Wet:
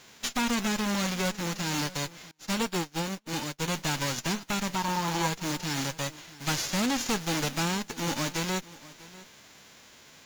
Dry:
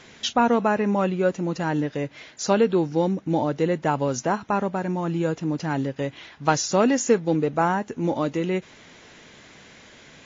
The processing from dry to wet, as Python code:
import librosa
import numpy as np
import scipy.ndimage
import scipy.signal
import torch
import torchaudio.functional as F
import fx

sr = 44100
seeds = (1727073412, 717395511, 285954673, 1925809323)

y = fx.envelope_flatten(x, sr, power=0.3)
y = fx.tube_stage(y, sr, drive_db=24.0, bias=0.8)
y = fx.peak_eq(y, sr, hz=920.0, db=11.5, octaves=0.6, at=(4.75, 5.28))
y = y + 10.0 ** (-19.5 / 20.0) * np.pad(y, (int(644 * sr / 1000.0), 0))[:len(y)]
y = fx.upward_expand(y, sr, threshold_db=-44.0, expansion=2.5, at=(2.31, 3.68))